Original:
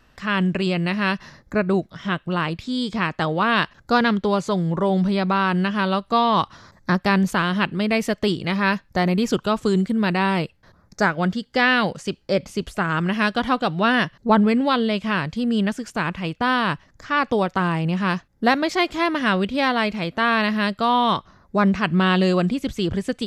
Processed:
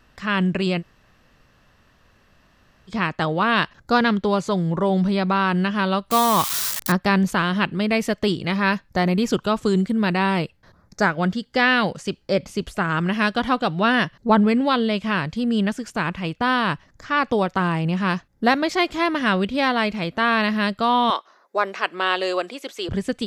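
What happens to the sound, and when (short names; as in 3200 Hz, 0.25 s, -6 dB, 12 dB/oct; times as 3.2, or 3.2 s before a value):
0.8–2.9 room tone, crossfade 0.06 s
6.11–6.92 switching spikes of -13.5 dBFS
21.1–22.89 HPF 400 Hz 24 dB/oct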